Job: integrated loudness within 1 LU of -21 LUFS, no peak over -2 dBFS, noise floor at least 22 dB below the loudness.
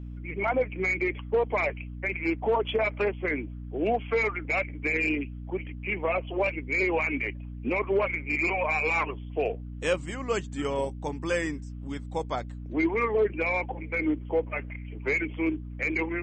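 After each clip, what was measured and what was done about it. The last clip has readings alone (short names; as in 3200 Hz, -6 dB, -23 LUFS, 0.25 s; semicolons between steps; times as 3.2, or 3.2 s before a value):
hum 60 Hz; harmonics up to 300 Hz; hum level -36 dBFS; loudness -28.5 LUFS; peak -14.0 dBFS; loudness target -21.0 LUFS
-> de-hum 60 Hz, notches 5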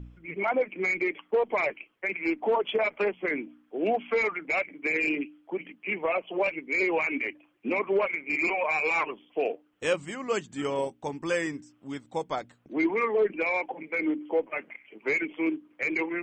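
hum none; loudness -28.5 LUFS; peak -14.5 dBFS; loudness target -21.0 LUFS
-> gain +7.5 dB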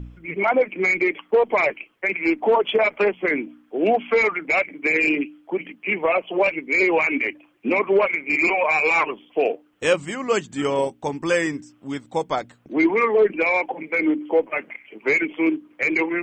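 loudness -21.0 LUFS; peak -7.0 dBFS; noise floor -58 dBFS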